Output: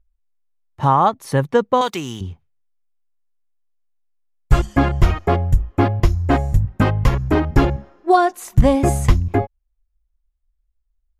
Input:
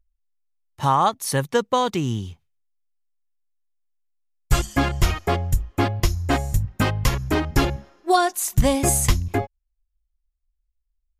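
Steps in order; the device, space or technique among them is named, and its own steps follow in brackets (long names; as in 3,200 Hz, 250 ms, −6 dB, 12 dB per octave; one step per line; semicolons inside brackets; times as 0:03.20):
0:01.81–0:02.21: spectral tilt +4.5 dB per octave
through cloth (high-shelf EQ 2,900 Hz −17.5 dB)
level +5.5 dB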